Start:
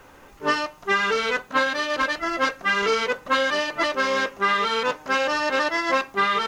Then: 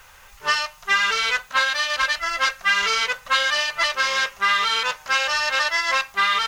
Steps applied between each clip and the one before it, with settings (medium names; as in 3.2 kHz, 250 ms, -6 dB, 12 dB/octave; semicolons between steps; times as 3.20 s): amplifier tone stack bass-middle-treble 10-0-10; trim +8.5 dB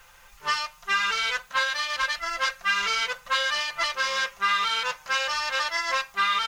comb 5.8 ms, depth 41%; trim -5.5 dB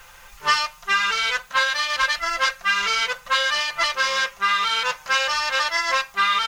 gain riding 0.5 s; trim +4.5 dB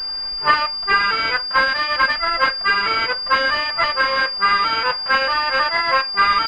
class-D stage that switches slowly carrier 4.8 kHz; trim +5.5 dB